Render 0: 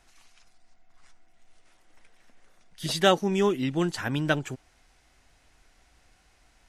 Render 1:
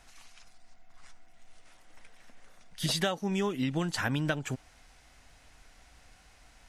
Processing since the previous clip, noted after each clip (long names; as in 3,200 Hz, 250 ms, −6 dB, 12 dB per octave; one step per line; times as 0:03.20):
parametric band 360 Hz −7.5 dB 0.28 octaves
downward compressor 20 to 1, threshold −30 dBFS, peak gain reduction 16 dB
level +4 dB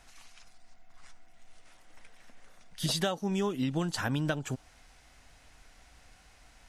dynamic equaliser 2,100 Hz, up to −6 dB, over −52 dBFS, Q 1.9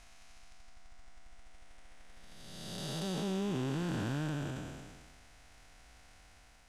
spectrum smeared in time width 635 ms
transient designer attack −1 dB, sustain +6 dB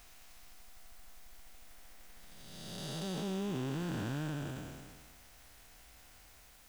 bit-depth reduction 10 bits, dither triangular
level −2 dB